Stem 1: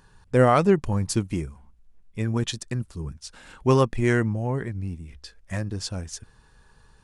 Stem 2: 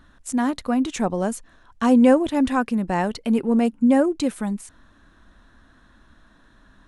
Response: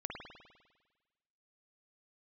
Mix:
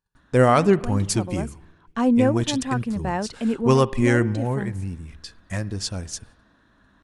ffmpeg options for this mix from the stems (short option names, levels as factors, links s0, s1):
-filter_complex "[0:a]agate=range=0.0251:threshold=0.00355:ratio=16:detection=peak,highshelf=f=4900:g=11.5,volume=1.06,asplit=3[s0][s1][s2];[s1]volume=0.158[s3];[1:a]highpass=56,adelay=150,volume=0.708[s4];[s2]apad=whole_len=309770[s5];[s4][s5]sidechaincompress=threshold=0.1:ratio=8:attack=16:release=1430[s6];[2:a]atrim=start_sample=2205[s7];[s3][s7]afir=irnorm=-1:irlink=0[s8];[s0][s6][s8]amix=inputs=3:normalize=0,highshelf=f=7000:g=-10"